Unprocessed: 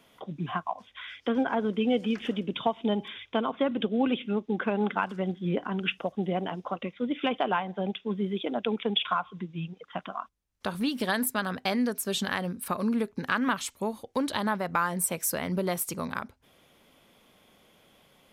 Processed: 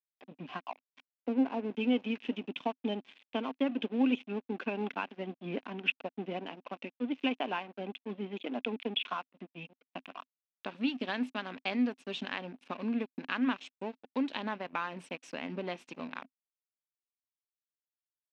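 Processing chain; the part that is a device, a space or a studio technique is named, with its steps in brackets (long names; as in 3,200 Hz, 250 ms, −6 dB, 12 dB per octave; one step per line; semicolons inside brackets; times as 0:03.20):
0:01.00–0:01.71: low-pass filter 1,200 Hz 24 dB per octave
blown loudspeaker (dead-zone distortion −39 dBFS; loudspeaker in its box 210–4,800 Hz, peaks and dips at 260 Hz +10 dB, 1,300 Hz −4 dB, 2,600 Hz +10 dB, 4,600 Hz −4 dB)
level −6.5 dB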